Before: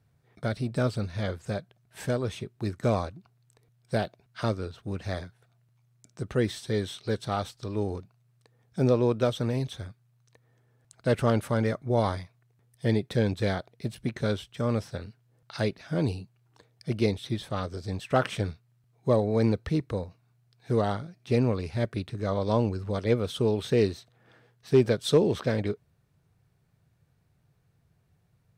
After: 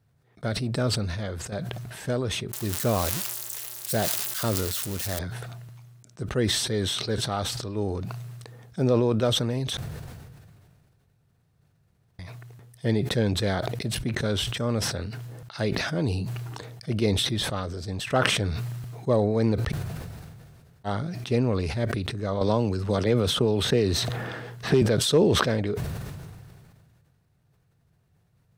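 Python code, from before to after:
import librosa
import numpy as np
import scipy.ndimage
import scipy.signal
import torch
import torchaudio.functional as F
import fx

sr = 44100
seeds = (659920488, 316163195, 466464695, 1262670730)

y = fx.crossing_spikes(x, sr, level_db=-21.5, at=(2.53, 5.19))
y = fx.band_squash(y, sr, depth_pct=100, at=(22.41, 24.82))
y = fx.edit(y, sr, fx.fade_out_to(start_s=1.09, length_s=0.43, floor_db=-10.0),
    fx.room_tone_fill(start_s=9.77, length_s=2.42),
    fx.room_tone_fill(start_s=19.7, length_s=1.16, crossfade_s=0.04), tone=tone)
y = fx.notch(y, sr, hz=2300.0, q=27.0)
y = fx.sustainer(y, sr, db_per_s=27.0)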